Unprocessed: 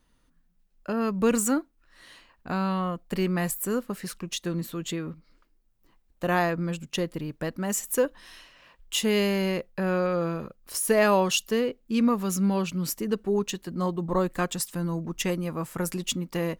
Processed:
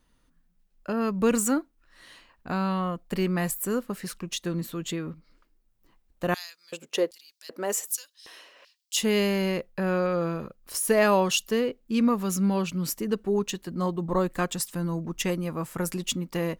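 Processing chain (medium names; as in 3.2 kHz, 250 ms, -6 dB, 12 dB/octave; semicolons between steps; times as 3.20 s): 6.34–8.97 s: LFO high-pass square 1.3 Hz 440–4800 Hz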